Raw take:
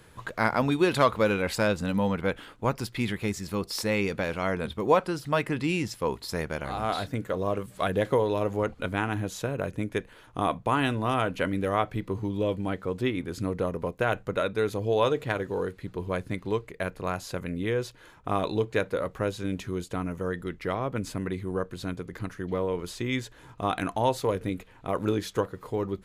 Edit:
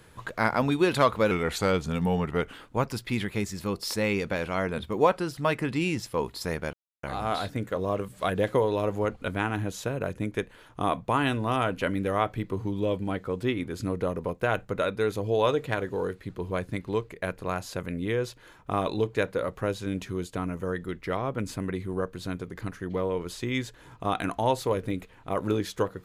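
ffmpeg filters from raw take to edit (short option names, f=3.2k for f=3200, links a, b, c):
-filter_complex "[0:a]asplit=4[a][b][c][d];[a]atrim=end=1.314[e];[b]atrim=start=1.31:end=2.41,asetpts=PTS-STARTPTS,asetrate=39690,aresample=44100[f];[c]atrim=start=2.406:end=6.61,asetpts=PTS-STARTPTS,afade=t=out:st=4.2:d=0.004:c=hsin,apad=pad_dur=0.3[g];[d]atrim=start=6.61,asetpts=PTS-STARTPTS,afade=t=in:d=0.004:c=hsin[h];[e][f]acrossfade=d=0.004:c1=hsin:c2=hsin[i];[g][h]concat=n=2:v=0:a=1[j];[i][j]acrossfade=d=0.004:c1=hsin:c2=hsin"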